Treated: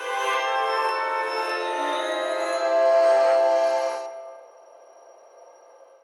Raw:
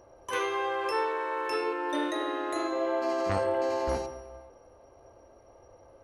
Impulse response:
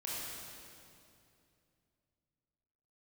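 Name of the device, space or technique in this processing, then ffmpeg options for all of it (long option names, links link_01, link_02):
ghost voice: -filter_complex "[0:a]areverse[link_01];[1:a]atrim=start_sample=2205[link_02];[link_01][link_02]afir=irnorm=-1:irlink=0,areverse,highpass=frequency=500:width=0.5412,highpass=frequency=500:width=1.3066,volume=6dB"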